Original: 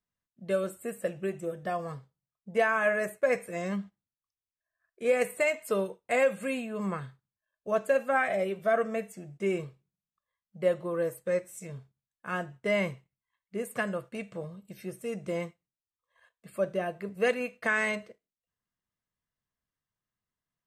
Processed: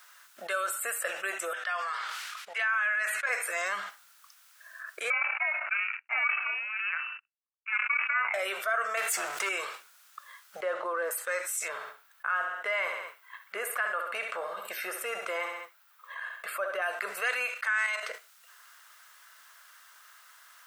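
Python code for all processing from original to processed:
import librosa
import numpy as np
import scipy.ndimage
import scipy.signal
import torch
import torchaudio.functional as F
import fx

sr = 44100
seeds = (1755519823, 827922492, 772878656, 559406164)

y = fx.chain(x, sr, fx.bandpass_q(hz=2600.0, q=1.0),
    fx.sustainer(db_per_s=64.0), at=(1.53, 3.29))
y = fx.chain(y, sr, fx.power_curve(exponent=2.0),
    fx.freq_invert(carrier_hz=2800),
    fx.sustainer(db_per_s=130.0), at=(5.1, 8.34))
y = fx.chain(y, sr, fx.power_curve(exponent=0.7),
    fx.env_flatten(amount_pct=50), at=(8.97, 9.49))
y = fx.chain(y, sr, fx.median_filter(points=9),
    fx.highpass(hz=220.0, slope=12),
    fx.tilt_eq(slope=-4.0), at=(10.62, 11.11))
y = fx.chain(y, sr, fx.peak_eq(hz=7100.0, db=-12.0, octaves=2.2),
    fx.echo_feedback(ms=67, feedback_pct=33, wet_db=-12.5), at=(11.68, 16.82))
y = fx.chain(y, sr, fx.highpass(hz=540.0, slope=24),
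    fx.notch(hz=700.0, q=5.4),
    fx.level_steps(step_db=10), at=(17.54, 18.03))
y = scipy.signal.sosfilt(scipy.signal.bessel(4, 1100.0, 'highpass', norm='mag', fs=sr, output='sos'), y)
y = fx.peak_eq(y, sr, hz=1400.0, db=11.0, octaves=0.45)
y = fx.env_flatten(y, sr, amount_pct=70)
y = y * 10.0 ** (-3.5 / 20.0)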